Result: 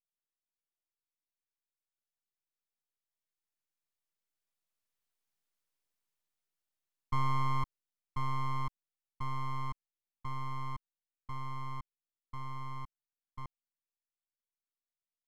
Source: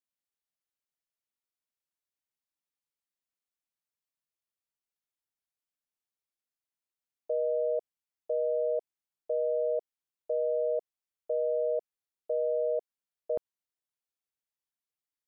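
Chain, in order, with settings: Doppler pass-by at 5.51, 15 m/s, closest 15 m; full-wave rectifier; gain +7 dB

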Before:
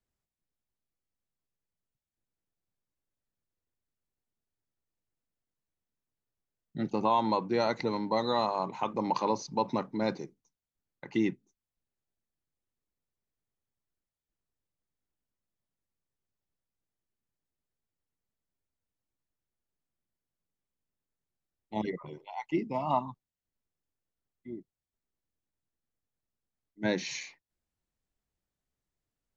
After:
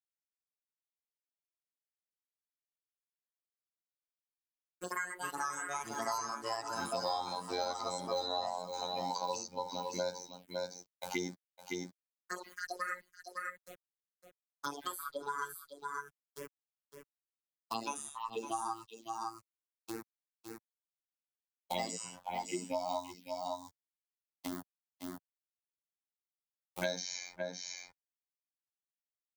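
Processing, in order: notch 920 Hz, Q 11; gate with hold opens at -51 dBFS; tilt +4.5 dB/oct; comb 1.3 ms, depth 99%; harmonic-percussive split percussive -14 dB; fifteen-band EQ 160 Hz -7 dB, 400 Hz +10 dB, 1600 Hz -5 dB; bit-crush 10-bit; envelope phaser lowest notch 260 Hz, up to 2700 Hz, full sweep at -36 dBFS; robotiser 89.8 Hz; echoes that change speed 0.481 s, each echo +4 st, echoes 3, each echo -6 dB; echo 0.559 s -11.5 dB; three-band squash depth 100%; gain +3.5 dB

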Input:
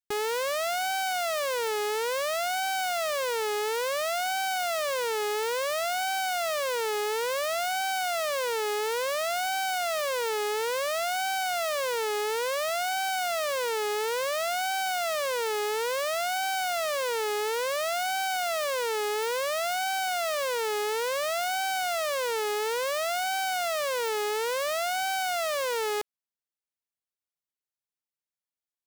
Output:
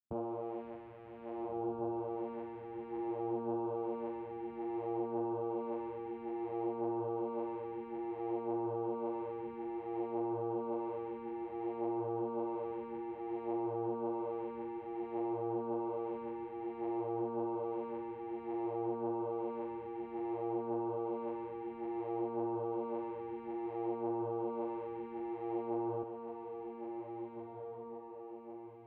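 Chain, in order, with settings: steep low-pass 550 Hz 36 dB/oct; tilt -3 dB/oct; compressor, threshold -33 dBFS, peak gain reduction 6.5 dB; vocoder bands 4, saw 116 Hz; diffused feedback echo 1.639 s, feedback 47%, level -5 dB; ensemble effect; gain -1 dB

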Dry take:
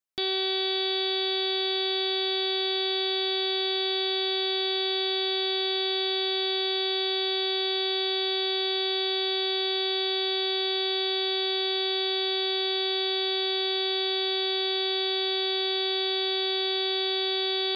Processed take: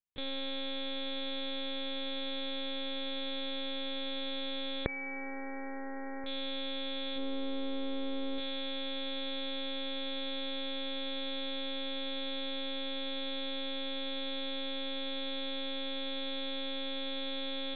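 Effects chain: 4.85–6.27 brick-wall FIR low-pass 2500 Hz; 7.17–8.39 tilt shelf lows +8.5 dB; monotone LPC vocoder at 8 kHz 270 Hz; gain -8 dB

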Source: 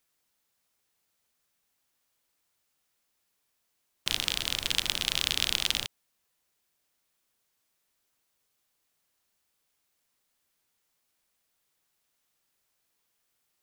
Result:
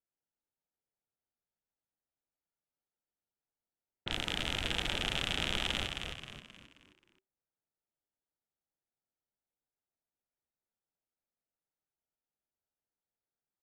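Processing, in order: Butterworth band-stop 1100 Hz, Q 4.8; bell 4900 Hz -11.5 dB 1.1 oct; sample leveller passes 3; air absorption 69 m; low-pass opened by the level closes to 1200 Hz, open at -27 dBFS; frequency-shifting echo 0.265 s, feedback 42%, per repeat -77 Hz, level -5.5 dB; gain -7 dB

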